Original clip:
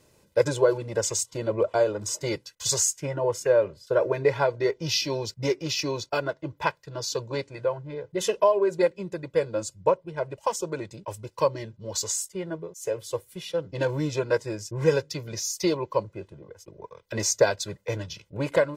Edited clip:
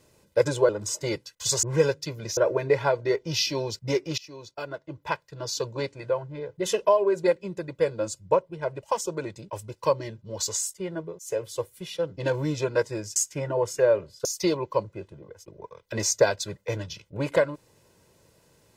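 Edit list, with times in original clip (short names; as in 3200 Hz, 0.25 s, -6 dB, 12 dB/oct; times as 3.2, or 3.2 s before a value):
0.69–1.89 cut
2.83–3.92 swap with 14.71–15.45
5.73–7.08 fade in, from -21.5 dB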